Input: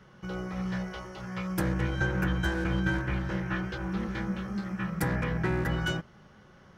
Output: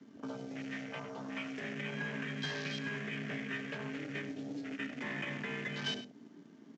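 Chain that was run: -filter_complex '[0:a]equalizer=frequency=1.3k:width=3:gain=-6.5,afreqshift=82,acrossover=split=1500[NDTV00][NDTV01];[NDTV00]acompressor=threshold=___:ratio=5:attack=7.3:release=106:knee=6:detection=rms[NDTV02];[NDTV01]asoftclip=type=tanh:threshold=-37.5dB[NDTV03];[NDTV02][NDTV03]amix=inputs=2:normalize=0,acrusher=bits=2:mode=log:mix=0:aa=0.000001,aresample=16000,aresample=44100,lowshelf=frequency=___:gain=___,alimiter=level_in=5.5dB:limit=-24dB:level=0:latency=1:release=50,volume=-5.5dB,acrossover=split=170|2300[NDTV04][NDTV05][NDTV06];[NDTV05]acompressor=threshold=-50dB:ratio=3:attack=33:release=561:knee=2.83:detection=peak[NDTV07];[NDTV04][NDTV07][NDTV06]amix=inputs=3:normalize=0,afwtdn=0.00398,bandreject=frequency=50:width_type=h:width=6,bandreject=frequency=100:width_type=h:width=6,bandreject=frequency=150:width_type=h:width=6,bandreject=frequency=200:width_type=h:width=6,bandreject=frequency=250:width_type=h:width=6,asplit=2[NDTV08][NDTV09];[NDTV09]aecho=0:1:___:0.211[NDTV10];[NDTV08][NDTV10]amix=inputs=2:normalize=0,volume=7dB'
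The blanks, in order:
-38dB, 170, -10.5, 103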